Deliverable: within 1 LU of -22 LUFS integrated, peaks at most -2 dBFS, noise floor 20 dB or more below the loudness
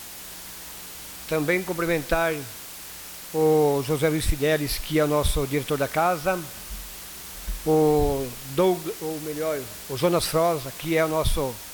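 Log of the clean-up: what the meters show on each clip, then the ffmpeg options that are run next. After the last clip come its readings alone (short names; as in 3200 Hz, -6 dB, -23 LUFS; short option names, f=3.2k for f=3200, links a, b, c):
noise floor -40 dBFS; noise floor target -45 dBFS; loudness -24.5 LUFS; peak -9.0 dBFS; loudness target -22.0 LUFS
-> -af "afftdn=nr=6:nf=-40"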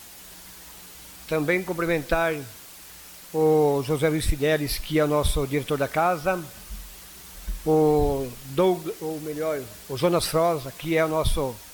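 noise floor -45 dBFS; loudness -24.5 LUFS; peak -9.5 dBFS; loudness target -22.0 LUFS
-> -af "volume=2.5dB"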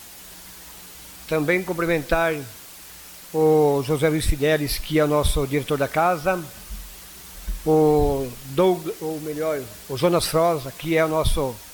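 loudness -22.0 LUFS; peak -7.0 dBFS; noise floor -42 dBFS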